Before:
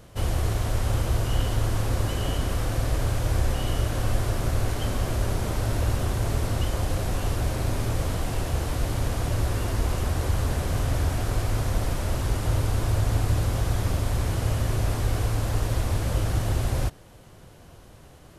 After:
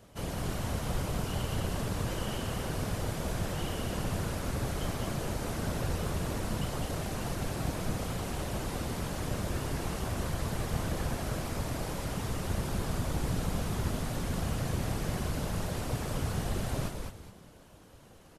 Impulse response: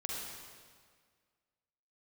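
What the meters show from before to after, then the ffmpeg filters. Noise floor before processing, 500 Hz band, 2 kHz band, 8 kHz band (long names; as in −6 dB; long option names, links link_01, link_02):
−49 dBFS, −5.0 dB, −4.5 dB, −4.5 dB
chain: -filter_complex "[0:a]highpass=86,afftfilt=real='hypot(re,im)*cos(2*PI*random(0))':imag='hypot(re,im)*sin(2*PI*random(1))':win_size=512:overlap=0.75,asplit=5[link_01][link_02][link_03][link_04][link_05];[link_02]adelay=207,afreqshift=-100,volume=-4.5dB[link_06];[link_03]adelay=414,afreqshift=-200,volume=-15dB[link_07];[link_04]adelay=621,afreqshift=-300,volume=-25.4dB[link_08];[link_05]adelay=828,afreqshift=-400,volume=-35.9dB[link_09];[link_01][link_06][link_07][link_08][link_09]amix=inputs=5:normalize=0"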